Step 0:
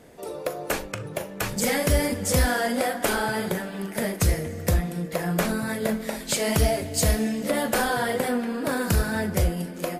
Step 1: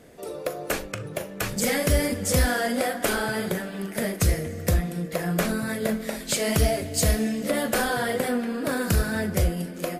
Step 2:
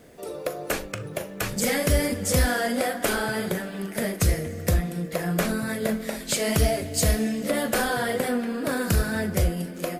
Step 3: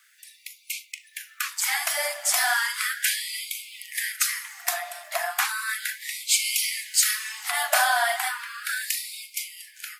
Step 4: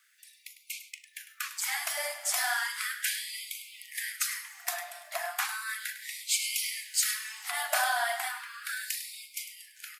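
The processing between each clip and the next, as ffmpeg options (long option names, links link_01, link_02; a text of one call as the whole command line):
ffmpeg -i in.wav -af "equalizer=frequency=900:width=4.1:gain=-5.5" out.wav
ffmpeg -i in.wav -af "acrusher=bits=10:mix=0:aa=0.000001" out.wav
ffmpeg -i in.wav -af "dynaudnorm=framelen=800:gausssize=5:maxgain=7dB,afftfilt=real='re*gte(b*sr/1024,580*pow(2100/580,0.5+0.5*sin(2*PI*0.35*pts/sr)))':imag='im*gte(b*sr/1024,580*pow(2100/580,0.5+0.5*sin(2*PI*0.35*pts/sr)))':win_size=1024:overlap=0.75" out.wav
ffmpeg -i in.wav -af "aecho=1:1:102:0.251,volume=-7dB" out.wav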